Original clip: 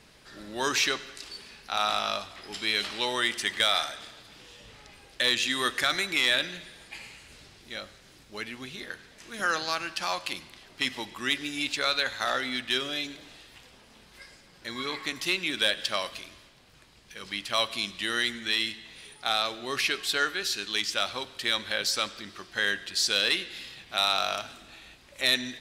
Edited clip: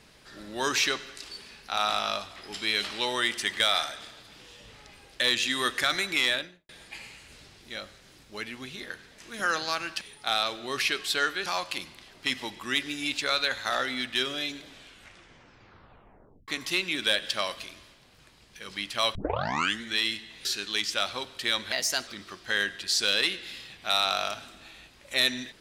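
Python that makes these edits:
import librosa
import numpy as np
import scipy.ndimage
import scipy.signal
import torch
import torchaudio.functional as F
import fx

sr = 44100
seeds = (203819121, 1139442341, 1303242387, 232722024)

y = fx.studio_fade_out(x, sr, start_s=6.22, length_s=0.47)
y = fx.edit(y, sr, fx.tape_stop(start_s=13.19, length_s=1.84),
    fx.tape_start(start_s=17.7, length_s=0.66),
    fx.move(start_s=19.0, length_s=1.45, to_s=10.01),
    fx.speed_span(start_s=21.72, length_s=0.43, speed=1.21), tone=tone)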